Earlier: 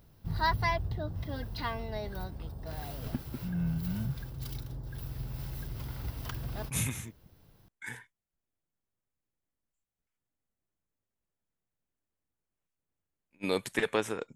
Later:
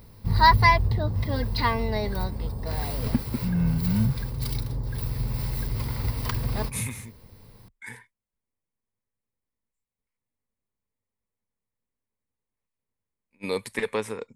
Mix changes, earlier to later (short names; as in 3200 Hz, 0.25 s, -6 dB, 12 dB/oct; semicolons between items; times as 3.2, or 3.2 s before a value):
background +9.5 dB; master: add ripple EQ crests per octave 0.92, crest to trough 7 dB